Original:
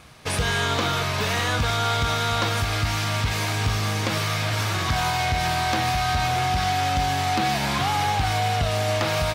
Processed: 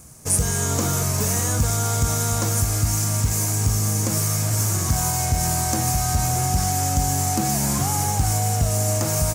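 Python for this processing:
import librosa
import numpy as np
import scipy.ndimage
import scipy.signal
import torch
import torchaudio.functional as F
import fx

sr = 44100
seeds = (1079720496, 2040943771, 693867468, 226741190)

p1 = fx.curve_eq(x, sr, hz=(210.0, 3700.0, 6800.0), db=(0, -18, 10))
p2 = fx.quant_float(p1, sr, bits=2)
p3 = p1 + F.gain(torch.from_numpy(p2), -3.5).numpy()
y = fx.rider(p3, sr, range_db=10, speed_s=0.5)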